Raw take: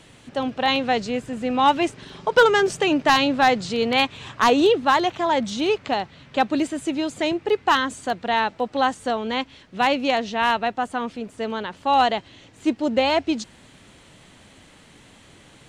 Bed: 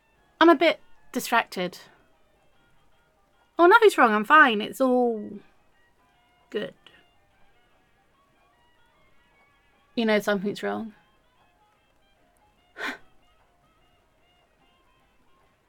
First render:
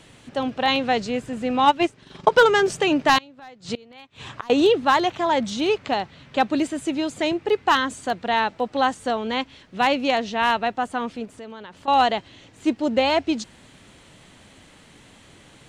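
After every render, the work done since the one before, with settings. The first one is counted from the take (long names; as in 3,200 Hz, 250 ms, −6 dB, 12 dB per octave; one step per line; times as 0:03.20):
0:01.65–0:02.29: transient designer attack +9 dB, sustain −10 dB
0:03.18–0:04.50: gate with flip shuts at −16 dBFS, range −26 dB
0:11.25–0:11.88: downward compressor 3 to 1, threshold −38 dBFS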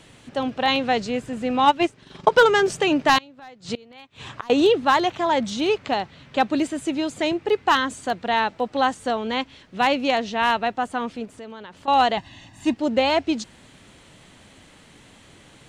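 0:12.17–0:12.74: comb filter 1.1 ms, depth 95%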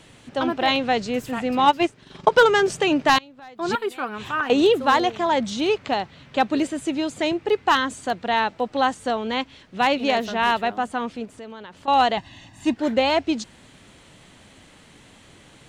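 mix in bed −10.5 dB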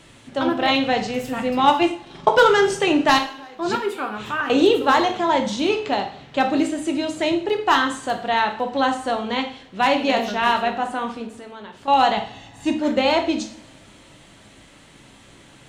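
coupled-rooms reverb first 0.5 s, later 2.6 s, from −27 dB, DRR 3.5 dB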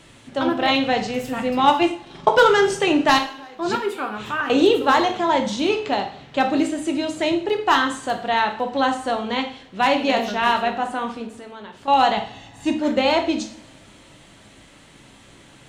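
no processing that can be heard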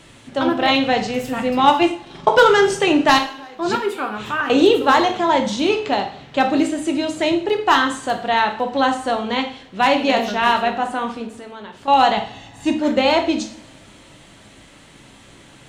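level +2.5 dB
brickwall limiter −2 dBFS, peak gain reduction 1.5 dB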